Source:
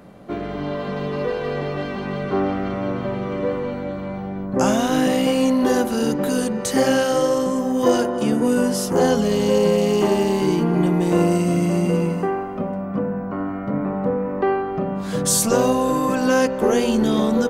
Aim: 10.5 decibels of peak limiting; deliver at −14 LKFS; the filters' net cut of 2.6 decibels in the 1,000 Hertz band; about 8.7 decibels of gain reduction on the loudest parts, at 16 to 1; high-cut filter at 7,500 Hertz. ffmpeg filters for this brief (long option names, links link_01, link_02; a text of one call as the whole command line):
ffmpeg -i in.wav -af "lowpass=7500,equalizer=frequency=1000:width_type=o:gain=-3.5,acompressor=threshold=-22dB:ratio=16,volume=18dB,alimiter=limit=-6dB:level=0:latency=1" out.wav